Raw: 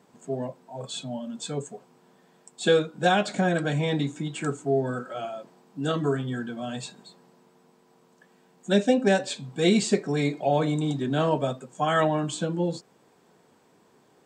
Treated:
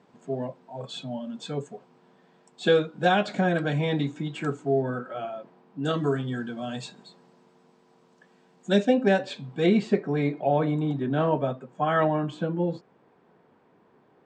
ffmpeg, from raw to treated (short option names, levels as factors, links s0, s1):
-af "asetnsamples=n=441:p=0,asendcmd='4.82 lowpass f 2700;5.85 lowpass f 6100;8.85 lowpass f 3400;9.66 lowpass f 2200',lowpass=4200"